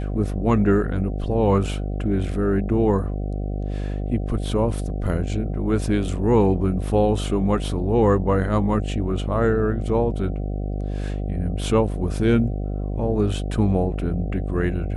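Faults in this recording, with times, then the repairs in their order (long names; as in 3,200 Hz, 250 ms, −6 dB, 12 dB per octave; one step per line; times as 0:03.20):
mains buzz 50 Hz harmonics 15 −26 dBFS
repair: hum removal 50 Hz, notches 15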